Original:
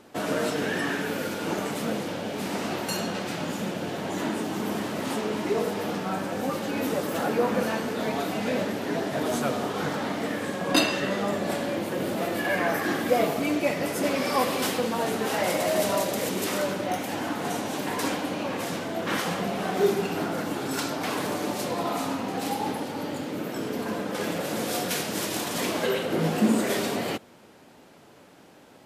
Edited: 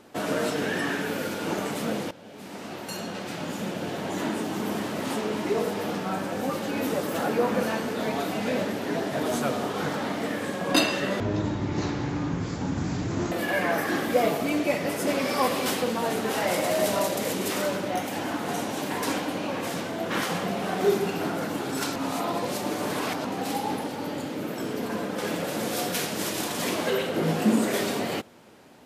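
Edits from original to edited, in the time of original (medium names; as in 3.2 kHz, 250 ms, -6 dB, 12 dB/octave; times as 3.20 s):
2.11–3.87 s: fade in, from -17.5 dB
11.20–12.28 s: speed 51%
20.92–22.21 s: reverse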